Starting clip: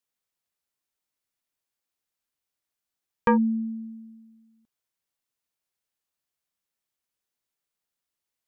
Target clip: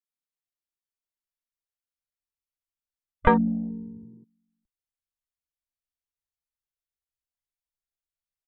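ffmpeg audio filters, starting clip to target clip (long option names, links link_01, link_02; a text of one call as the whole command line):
ffmpeg -i in.wav -filter_complex "[0:a]asplit=3[link_01][link_02][link_03];[link_02]asetrate=35002,aresample=44100,atempo=1.25992,volume=-10dB[link_04];[link_03]asetrate=55563,aresample=44100,atempo=0.793701,volume=-14dB[link_05];[link_01][link_04][link_05]amix=inputs=3:normalize=0,afwtdn=0.0178,asubboost=boost=12:cutoff=70,volume=3dB" out.wav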